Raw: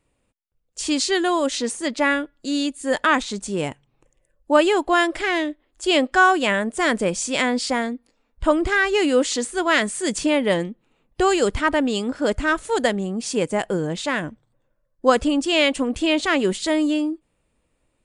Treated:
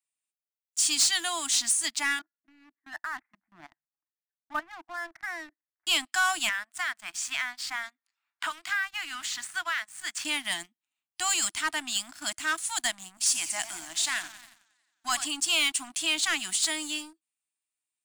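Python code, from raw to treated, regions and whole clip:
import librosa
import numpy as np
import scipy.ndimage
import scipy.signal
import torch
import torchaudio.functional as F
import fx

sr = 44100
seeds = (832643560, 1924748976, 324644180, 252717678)

y = fx.chain(x, sr, fx.steep_lowpass(hz=2000.0, slope=72),
    fx.level_steps(step_db=13), at=(2.19, 5.87))
y = fx.chain(y, sr, fx.bandpass_q(hz=1400.0, q=1.6),
    fx.band_squash(depth_pct=100), at=(6.49, 10.25))
y = fx.chain(y, sr, fx.bass_treble(bass_db=-10, treble_db=1),
    fx.echo_warbled(ms=90, feedback_pct=74, rate_hz=2.8, cents=187, wet_db=-14.0), at=(13.17, 15.26))
y = np.diff(y, prepend=0.0)
y = fx.leveller(y, sr, passes=3)
y = scipy.signal.sosfilt(scipy.signal.ellip(3, 1.0, 40, [330.0, 660.0], 'bandstop', fs=sr, output='sos'), y)
y = y * librosa.db_to_amplitude(-3.5)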